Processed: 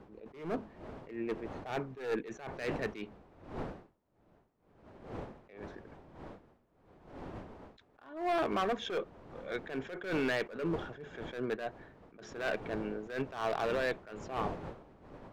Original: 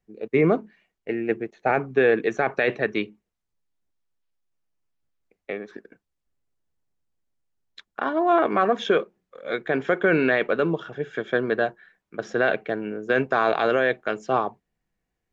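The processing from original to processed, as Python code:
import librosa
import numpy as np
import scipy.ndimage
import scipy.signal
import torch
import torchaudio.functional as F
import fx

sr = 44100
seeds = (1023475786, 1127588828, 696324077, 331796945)

y = fx.diode_clip(x, sr, knee_db=-11.0)
y = fx.dmg_wind(y, sr, seeds[0], corner_hz=570.0, level_db=-40.0)
y = np.clip(10.0 ** (19.5 / 20.0) * y, -1.0, 1.0) / 10.0 ** (19.5 / 20.0)
y = fx.attack_slew(y, sr, db_per_s=110.0)
y = y * librosa.db_to_amplitude(-7.5)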